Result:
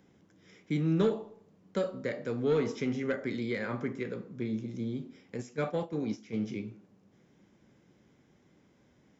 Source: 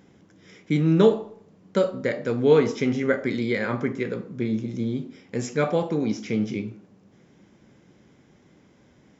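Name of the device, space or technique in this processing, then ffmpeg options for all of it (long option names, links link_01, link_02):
one-band saturation: -filter_complex "[0:a]acrossover=split=280|3900[link_01][link_02][link_03];[link_02]asoftclip=type=tanh:threshold=-16dB[link_04];[link_01][link_04][link_03]amix=inputs=3:normalize=0,asplit=3[link_05][link_06][link_07];[link_05]afade=type=out:start_time=5.36:duration=0.02[link_08];[link_06]agate=range=-9dB:threshold=-25dB:ratio=16:detection=peak,afade=type=in:start_time=5.36:duration=0.02,afade=type=out:start_time=6.44:duration=0.02[link_09];[link_07]afade=type=in:start_time=6.44:duration=0.02[link_10];[link_08][link_09][link_10]amix=inputs=3:normalize=0,volume=-8dB"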